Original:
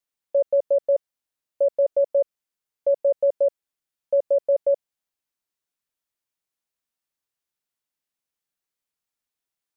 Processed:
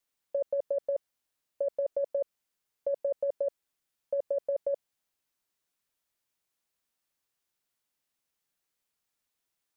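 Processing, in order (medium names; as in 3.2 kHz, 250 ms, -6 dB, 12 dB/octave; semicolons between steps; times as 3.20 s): compressor with a negative ratio -25 dBFS, ratio -1; trim -3.5 dB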